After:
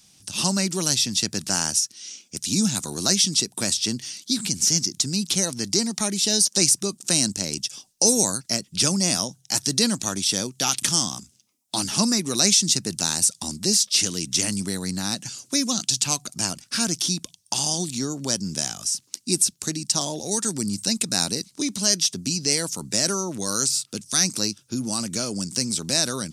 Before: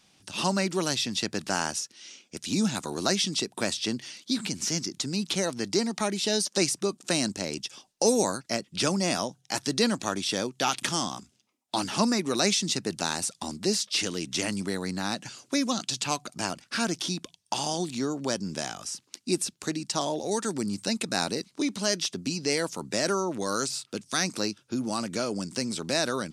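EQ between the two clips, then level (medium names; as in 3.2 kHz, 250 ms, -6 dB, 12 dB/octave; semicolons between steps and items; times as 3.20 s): tone controls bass +10 dB, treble +5 dB; treble shelf 4.3 kHz +12 dB; peaking EQ 5.7 kHz +2 dB 0.23 oct; -3.0 dB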